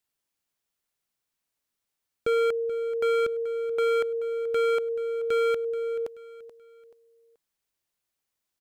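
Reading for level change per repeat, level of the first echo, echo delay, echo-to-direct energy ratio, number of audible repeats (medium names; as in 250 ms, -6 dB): -9.0 dB, -15.0 dB, 431 ms, -14.5 dB, 3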